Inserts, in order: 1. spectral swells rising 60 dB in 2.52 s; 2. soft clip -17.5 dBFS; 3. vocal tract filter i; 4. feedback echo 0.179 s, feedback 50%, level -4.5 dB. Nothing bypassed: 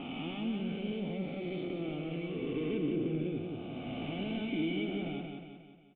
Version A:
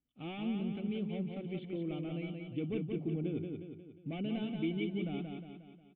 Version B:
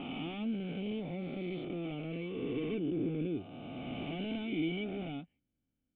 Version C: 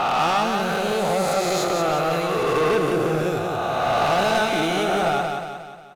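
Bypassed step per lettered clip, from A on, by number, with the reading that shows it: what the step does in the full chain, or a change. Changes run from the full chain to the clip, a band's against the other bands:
1, 125 Hz band +4.5 dB; 4, echo-to-direct -3.0 dB to none; 3, 1 kHz band +12.0 dB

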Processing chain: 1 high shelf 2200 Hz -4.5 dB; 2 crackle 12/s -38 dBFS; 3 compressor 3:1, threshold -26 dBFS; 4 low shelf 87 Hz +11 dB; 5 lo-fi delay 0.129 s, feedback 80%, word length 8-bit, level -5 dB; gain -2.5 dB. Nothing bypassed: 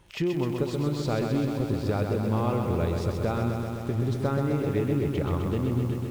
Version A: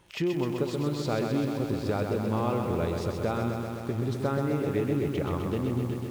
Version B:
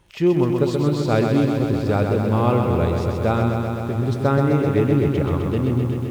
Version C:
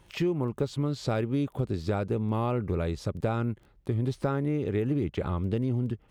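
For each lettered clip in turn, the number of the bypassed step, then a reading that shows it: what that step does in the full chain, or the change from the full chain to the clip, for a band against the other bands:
4, 125 Hz band -3.5 dB; 3, mean gain reduction 6.0 dB; 5, loudness change -2.5 LU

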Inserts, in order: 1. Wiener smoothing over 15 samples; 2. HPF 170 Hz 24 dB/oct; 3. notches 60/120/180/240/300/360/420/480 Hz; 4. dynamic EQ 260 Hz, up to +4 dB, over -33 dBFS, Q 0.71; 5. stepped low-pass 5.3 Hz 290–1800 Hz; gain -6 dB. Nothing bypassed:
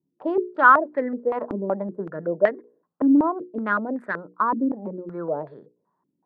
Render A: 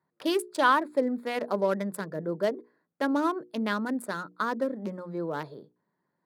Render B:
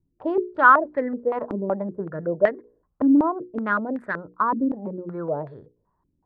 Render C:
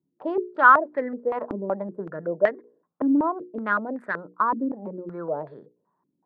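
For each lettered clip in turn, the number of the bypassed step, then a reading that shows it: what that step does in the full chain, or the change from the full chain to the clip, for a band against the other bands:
5, momentary loudness spread change -4 LU; 2, 125 Hz band +2.5 dB; 4, 250 Hz band -2.5 dB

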